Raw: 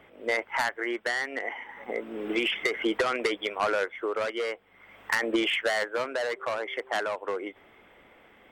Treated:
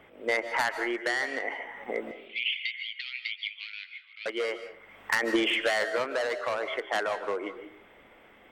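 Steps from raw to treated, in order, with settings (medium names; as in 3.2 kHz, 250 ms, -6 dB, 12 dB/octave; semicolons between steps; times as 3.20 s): 2.11–4.26 s: elliptic band-pass 2.2–4.4 kHz, stop band 80 dB; on a send: reverberation RT60 0.50 s, pre-delay 110 ms, DRR 9.5 dB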